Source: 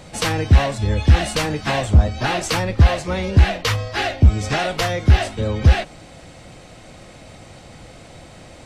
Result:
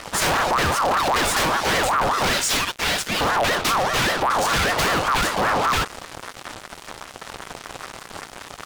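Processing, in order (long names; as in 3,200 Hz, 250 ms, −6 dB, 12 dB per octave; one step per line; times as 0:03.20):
0:02.33–0:03.21: high-pass filter 1,300 Hz 12 dB per octave
fuzz pedal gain 33 dB, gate −39 dBFS
ring modulator whose carrier an LFO sweeps 950 Hz, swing 35%, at 5.1 Hz
level −2.5 dB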